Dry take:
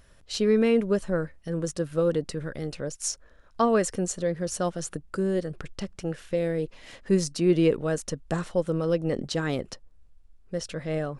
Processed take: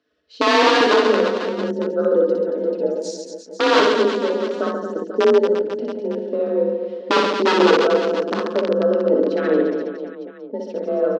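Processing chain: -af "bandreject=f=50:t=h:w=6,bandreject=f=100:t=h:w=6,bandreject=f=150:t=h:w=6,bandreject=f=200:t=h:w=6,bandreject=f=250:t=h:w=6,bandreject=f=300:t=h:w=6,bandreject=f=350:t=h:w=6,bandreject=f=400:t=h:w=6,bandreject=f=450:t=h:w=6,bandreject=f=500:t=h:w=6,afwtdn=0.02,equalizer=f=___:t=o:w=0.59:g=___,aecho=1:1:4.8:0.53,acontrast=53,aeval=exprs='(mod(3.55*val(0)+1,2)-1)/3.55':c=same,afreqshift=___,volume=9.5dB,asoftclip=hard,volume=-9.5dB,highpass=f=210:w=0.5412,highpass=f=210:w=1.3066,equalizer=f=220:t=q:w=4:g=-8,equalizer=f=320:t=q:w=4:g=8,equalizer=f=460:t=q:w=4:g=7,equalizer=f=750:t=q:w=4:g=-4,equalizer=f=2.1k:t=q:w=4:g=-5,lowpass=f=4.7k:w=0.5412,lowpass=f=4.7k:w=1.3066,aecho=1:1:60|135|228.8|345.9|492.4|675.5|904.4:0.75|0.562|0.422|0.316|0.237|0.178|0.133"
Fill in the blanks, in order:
840, -6.5, 37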